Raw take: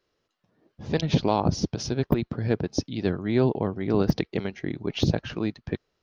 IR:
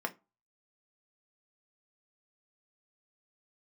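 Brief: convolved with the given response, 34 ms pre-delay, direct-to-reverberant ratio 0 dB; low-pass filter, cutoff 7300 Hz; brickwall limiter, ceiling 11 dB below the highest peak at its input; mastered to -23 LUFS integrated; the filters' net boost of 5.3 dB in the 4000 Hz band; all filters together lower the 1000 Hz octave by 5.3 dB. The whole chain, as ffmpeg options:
-filter_complex "[0:a]lowpass=7.3k,equalizer=f=1k:t=o:g=-7.5,equalizer=f=4k:t=o:g=7.5,alimiter=limit=-18.5dB:level=0:latency=1,asplit=2[a][b];[1:a]atrim=start_sample=2205,adelay=34[c];[b][c]afir=irnorm=-1:irlink=0,volume=-4.5dB[d];[a][d]amix=inputs=2:normalize=0,volume=6dB"

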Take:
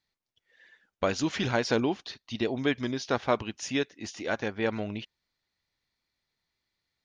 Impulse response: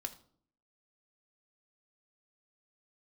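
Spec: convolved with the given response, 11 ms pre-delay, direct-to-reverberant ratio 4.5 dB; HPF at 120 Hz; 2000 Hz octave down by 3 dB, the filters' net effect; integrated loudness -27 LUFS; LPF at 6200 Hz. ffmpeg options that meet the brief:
-filter_complex "[0:a]highpass=120,lowpass=6.2k,equalizer=f=2k:t=o:g=-4,asplit=2[a][b];[1:a]atrim=start_sample=2205,adelay=11[c];[b][c]afir=irnorm=-1:irlink=0,volume=-3dB[d];[a][d]amix=inputs=2:normalize=0,volume=2.5dB"

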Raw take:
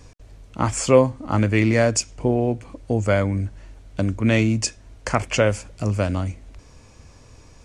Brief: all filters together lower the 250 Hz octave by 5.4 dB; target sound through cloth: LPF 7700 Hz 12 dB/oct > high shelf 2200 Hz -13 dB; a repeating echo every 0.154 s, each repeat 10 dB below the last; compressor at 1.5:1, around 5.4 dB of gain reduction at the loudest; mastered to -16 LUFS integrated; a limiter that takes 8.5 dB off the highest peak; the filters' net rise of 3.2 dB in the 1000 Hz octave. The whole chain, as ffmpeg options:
-af "equalizer=f=250:t=o:g=-7,equalizer=f=1k:t=o:g=7.5,acompressor=threshold=-23dB:ratio=1.5,alimiter=limit=-14dB:level=0:latency=1,lowpass=7.7k,highshelf=f=2.2k:g=-13,aecho=1:1:154|308|462|616:0.316|0.101|0.0324|0.0104,volume=12.5dB"

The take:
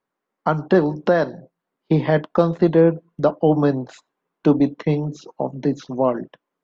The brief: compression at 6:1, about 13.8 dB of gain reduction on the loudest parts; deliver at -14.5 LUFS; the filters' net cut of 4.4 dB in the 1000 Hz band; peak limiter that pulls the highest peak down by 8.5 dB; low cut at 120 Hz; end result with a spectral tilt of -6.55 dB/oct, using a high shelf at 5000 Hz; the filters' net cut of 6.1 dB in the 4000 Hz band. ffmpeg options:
-af "highpass=120,equalizer=f=1k:t=o:g=-6,equalizer=f=4k:t=o:g=-9,highshelf=f=5k:g=3.5,acompressor=threshold=-26dB:ratio=6,volume=19.5dB,alimiter=limit=-2dB:level=0:latency=1"

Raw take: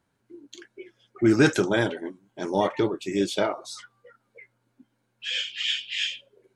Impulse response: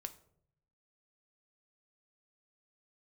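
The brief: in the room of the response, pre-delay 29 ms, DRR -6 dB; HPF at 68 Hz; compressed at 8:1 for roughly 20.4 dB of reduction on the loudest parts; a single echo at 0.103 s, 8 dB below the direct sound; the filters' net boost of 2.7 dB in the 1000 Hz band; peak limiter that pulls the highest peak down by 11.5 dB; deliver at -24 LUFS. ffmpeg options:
-filter_complex "[0:a]highpass=68,equalizer=f=1k:t=o:g=3.5,acompressor=threshold=-36dB:ratio=8,alimiter=level_in=9dB:limit=-24dB:level=0:latency=1,volume=-9dB,aecho=1:1:103:0.398,asplit=2[a][b];[1:a]atrim=start_sample=2205,adelay=29[c];[b][c]afir=irnorm=-1:irlink=0,volume=9.5dB[d];[a][d]amix=inputs=2:normalize=0,volume=12.5dB"

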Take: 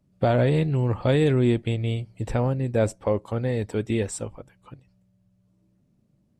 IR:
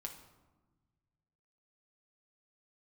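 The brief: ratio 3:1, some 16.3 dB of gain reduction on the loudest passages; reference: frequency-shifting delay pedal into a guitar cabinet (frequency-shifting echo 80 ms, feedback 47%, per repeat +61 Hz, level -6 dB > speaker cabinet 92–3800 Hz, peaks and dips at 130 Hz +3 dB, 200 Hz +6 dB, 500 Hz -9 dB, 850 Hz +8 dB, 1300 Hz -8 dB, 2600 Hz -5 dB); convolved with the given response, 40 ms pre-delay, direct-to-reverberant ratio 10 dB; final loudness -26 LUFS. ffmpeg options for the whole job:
-filter_complex "[0:a]acompressor=threshold=-40dB:ratio=3,asplit=2[a][b];[1:a]atrim=start_sample=2205,adelay=40[c];[b][c]afir=irnorm=-1:irlink=0,volume=-7dB[d];[a][d]amix=inputs=2:normalize=0,asplit=7[e][f][g][h][i][j][k];[f]adelay=80,afreqshift=61,volume=-6dB[l];[g]adelay=160,afreqshift=122,volume=-12.6dB[m];[h]adelay=240,afreqshift=183,volume=-19.1dB[n];[i]adelay=320,afreqshift=244,volume=-25.7dB[o];[j]adelay=400,afreqshift=305,volume=-32.2dB[p];[k]adelay=480,afreqshift=366,volume=-38.8dB[q];[e][l][m][n][o][p][q]amix=inputs=7:normalize=0,highpass=92,equalizer=f=130:t=q:w=4:g=3,equalizer=f=200:t=q:w=4:g=6,equalizer=f=500:t=q:w=4:g=-9,equalizer=f=850:t=q:w=4:g=8,equalizer=f=1.3k:t=q:w=4:g=-8,equalizer=f=2.6k:t=q:w=4:g=-5,lowpass=f=3.8k:w=0.5412,lowpass=f=3.8k:w=1.3066,volume=11dB"

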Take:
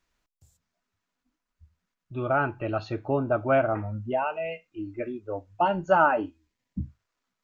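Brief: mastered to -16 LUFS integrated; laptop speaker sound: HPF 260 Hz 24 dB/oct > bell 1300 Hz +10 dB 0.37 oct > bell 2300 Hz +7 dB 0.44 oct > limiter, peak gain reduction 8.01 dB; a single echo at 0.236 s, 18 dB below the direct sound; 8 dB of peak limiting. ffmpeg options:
-af "alimiter=limit=-16.5dB:level=0:latency=1,highpass=f=260:w=0.5412,highpass=f=260:w=1.3066,equalizer=f=1.3k:t=o:w=0.37:g=10,equalizer=f=2.3k:t=o:w=0.44:g=7,aecho=1:1:236:0.126,volume=15dB,alimiter=limit=-4dB:level=0:latency=1"

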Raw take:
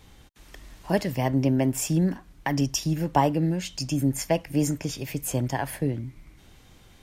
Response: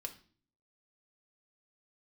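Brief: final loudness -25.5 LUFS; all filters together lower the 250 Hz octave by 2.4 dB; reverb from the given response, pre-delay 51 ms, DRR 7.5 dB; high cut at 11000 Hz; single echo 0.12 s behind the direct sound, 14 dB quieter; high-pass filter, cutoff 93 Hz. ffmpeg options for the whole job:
-filter_complex "[0:a]highpass=93,lowpass=11k,equalizer=f=250:t=o:g=-3,aecho=1:1:120:0.2,asplit=2[a][b];[1:a]atrim=start_sample=2205,adelay=51[c];[b][c]afir=irnorm=-1:irlink=0,volume=-5dB[d];[a][d]amix=inputs=2:normalize=0,volume=1dB"

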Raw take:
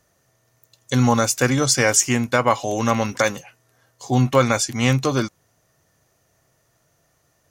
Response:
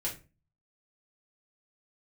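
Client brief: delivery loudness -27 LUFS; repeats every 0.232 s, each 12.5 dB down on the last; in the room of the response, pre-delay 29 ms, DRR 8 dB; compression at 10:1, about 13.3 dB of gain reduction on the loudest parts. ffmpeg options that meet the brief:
-filter_complex "[0:a]acompressor=threshold=-26dB:ratio=10,aecho=1:1:232|464|696:0.237|0.0569|0.0137,asplit=2[a][b];[1:a]atrim=start_sample=2205,adelay=29[c];[b][c]afir=irnorm=-1:irlink=0,volume=-10.5dB[d];[a][d]amix=inputs=2:normalize=0,volume=3dB"

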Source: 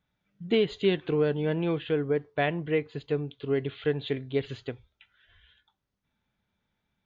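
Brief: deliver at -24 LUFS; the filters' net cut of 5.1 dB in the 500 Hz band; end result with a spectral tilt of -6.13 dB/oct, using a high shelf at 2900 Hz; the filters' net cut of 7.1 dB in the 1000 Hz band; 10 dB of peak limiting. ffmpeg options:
-af "equalizer=f=500:t=o:g=-4.5,equalizer=f=1k:t=o:g=-8.5,highshelf=f=2.9k:g=-4,volume=12dB,alimiter=limit=-13.5dB:level=0:latency=1"

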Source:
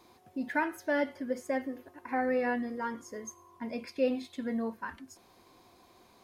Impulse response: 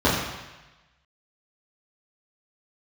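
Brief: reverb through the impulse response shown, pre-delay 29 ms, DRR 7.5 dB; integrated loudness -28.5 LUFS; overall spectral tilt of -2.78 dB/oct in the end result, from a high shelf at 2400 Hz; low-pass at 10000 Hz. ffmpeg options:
-filter_complex "[0:a]lowpass=10k,highshelf=f=2.4k:g=6,asplit=2[a][b];[1:a]atrim=start_sample=2205,adelay=29[c];[b][c]afir=irnorm=-1:irlink=0,volume=-27.5dB[d];[a][d]amix=inputs=2:normalize=0,volume=4dB"

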